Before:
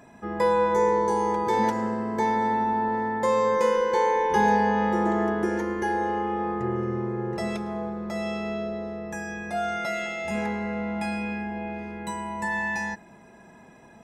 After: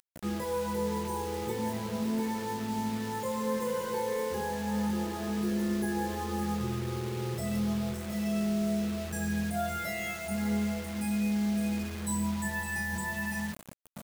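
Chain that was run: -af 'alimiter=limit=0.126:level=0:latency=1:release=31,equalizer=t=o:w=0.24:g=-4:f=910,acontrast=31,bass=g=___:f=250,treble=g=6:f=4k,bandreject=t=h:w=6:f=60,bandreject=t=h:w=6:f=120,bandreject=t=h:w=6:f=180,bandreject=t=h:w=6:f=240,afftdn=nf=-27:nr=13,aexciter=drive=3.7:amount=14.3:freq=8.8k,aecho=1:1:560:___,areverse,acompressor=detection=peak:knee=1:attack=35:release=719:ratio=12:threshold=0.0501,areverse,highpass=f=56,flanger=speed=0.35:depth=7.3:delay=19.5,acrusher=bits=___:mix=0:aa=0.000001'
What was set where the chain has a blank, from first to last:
12, 0.316, 6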